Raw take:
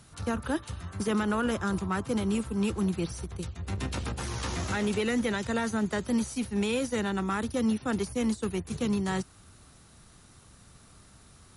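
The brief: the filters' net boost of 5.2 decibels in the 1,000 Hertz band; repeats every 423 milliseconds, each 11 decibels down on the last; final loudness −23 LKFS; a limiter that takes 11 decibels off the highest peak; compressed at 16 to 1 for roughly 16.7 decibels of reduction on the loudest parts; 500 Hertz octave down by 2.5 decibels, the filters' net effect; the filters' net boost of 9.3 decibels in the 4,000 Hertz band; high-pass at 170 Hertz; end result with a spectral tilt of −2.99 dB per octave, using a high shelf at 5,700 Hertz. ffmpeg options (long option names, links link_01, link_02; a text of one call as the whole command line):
ffmpeg -i in.wav -af "highpass=170,equalizer=frequency=500:width_type=o:gain=-4.5,equalizer=frequency=1000:width_type=o:gain=7,equalizer=frequency=4000:width_type=o:gain=8.5,highshelf=frequency=5700:gain=8,acompressor=threshold=-40dB:ratio=16,alimiter=level_in=13dB:limit=-24dB:level=0:latency=1,volume=-13dB,aecho=1:1:423|846|1269:0.282|0.0789|0.0221,volume=23.5dB" out.wav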